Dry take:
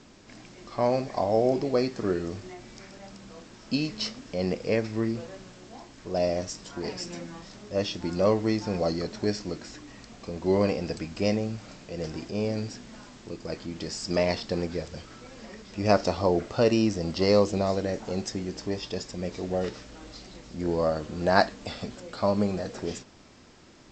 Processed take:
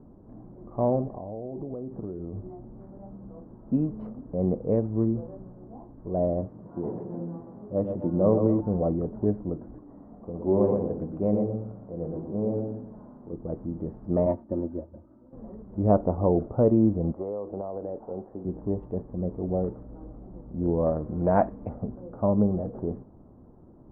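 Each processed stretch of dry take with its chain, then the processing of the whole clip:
0:01.09–0:02.81: downward compressor, threshold −33 dBFS + high-frequency loss of the air 270 metres
0:06.46–0:08.61: high-pass filter 100 Hz + echo with a time of its own for lows and highs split 350 Hz, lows 93 ms, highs 127 ms, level −6 dB
0:09.78–0:13.33: low-shelf EQ 120 Hz −9.5 dB + mains-hum notches 60/120/180/240/300/360/420/480 Hz + repeating echo 117 ms, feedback 30%, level −4 dB
0:14.26–0:15.33: high-pass filter 83 Hz + comb filter 3.3 ms, depth 77% + expander for the loud parts, over −42 dBFS
0:17.12–0:18.45: three-way crossover with the lows and the highs turned down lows −15 dB, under 370 Hz, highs −23 dB, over 2,400 Hz + downward compressor 16 to 1, threshold −28 dBFS
0:20.86–0:21.69: low-pass with resonance 2,500 Hz, resonance Q 6.3 + highs frequency-modulated by the lows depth 0.22 ms
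whole clip: adaptive Wiener filter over 15 samples; low-pass filter 1,000 Hz 24 dB per octave; low-shelf EQ 360 Hz +8.5 dB; level −2.5 dB

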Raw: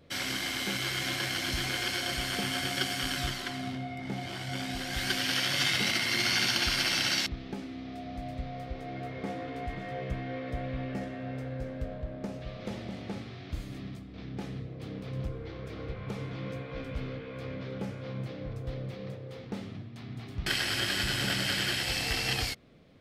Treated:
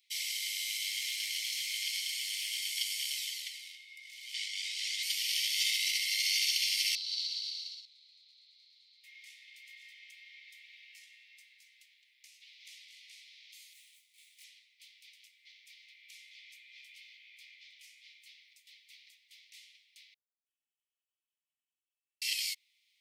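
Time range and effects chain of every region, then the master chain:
0:00.86–0:02.62: parametric band 1,400 Hz +7.5 dB 0.23 octaves + highs frequency-modulated by the lows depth 0.11 ms
0:04.34–0:05.03: low-pass filter 7,200 Hz + envelope flattener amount 100%
0:06.95–0:09.04: resonant band-pass 4,200 Hz, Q 7.7 + bouncing-ball delay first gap 130 ms, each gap 0.85×, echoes 7, each echo −2 dB
0:13.73–0:14.44: running median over 9 samples + spectral tilt +2.5 dB per octave + micro pitch shift up and down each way 48 cents
0:20.14–0:22.22: lower of the sound and its delayed copy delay 2.7 ms + elliptic low-pass filter 780 Hz, stop band 60 dB
whole clip: Butterworth high-pass 2,000 Hz 96 dB per octave; high-shelf EQ 4,200 Hz +11 dB; level −6.5 dB

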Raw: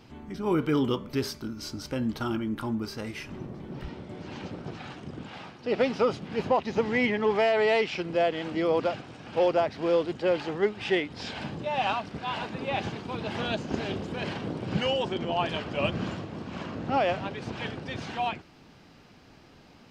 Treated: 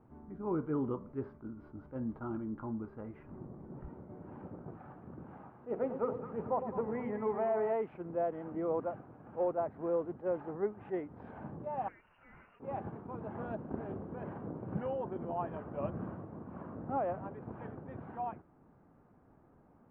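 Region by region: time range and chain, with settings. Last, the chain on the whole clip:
0:04.78–0:07.73: mains-hum notches 50/100/150/200/250/300/350/400/450/500 Hz + echo with a time of its own for lows and highs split 990 Hz, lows 108 ms, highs 217 ms, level −9 dB
0:11.88–0:12.60: voice inversion scrambler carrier 3,000 Hz + parametric band 370 Hz −7.5 dB 1.9 octaves + downward compressor 2.5 to 1, threshold −38 dBFS
whole clip: low-pass filter 1,300 Hz 24 dB per octave; level that may rise only so fast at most 330 dB per second; level −8.5 dB

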